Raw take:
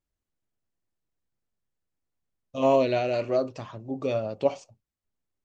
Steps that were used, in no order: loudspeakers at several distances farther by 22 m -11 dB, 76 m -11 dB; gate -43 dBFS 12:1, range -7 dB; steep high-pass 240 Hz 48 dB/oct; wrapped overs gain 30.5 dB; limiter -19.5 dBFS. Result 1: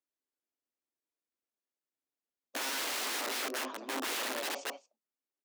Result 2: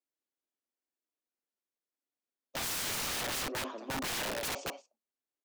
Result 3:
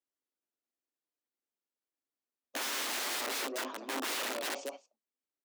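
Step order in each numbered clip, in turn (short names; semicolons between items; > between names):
loudspeakers at several distances > limiter > wrapped overs > gate > steep high-pass; loudspeakers at several distances > gate > steep high-pass > wrapped overs > limiter; limiter > loudspeakers at several distances > gate > wrapped overs > steep high-pass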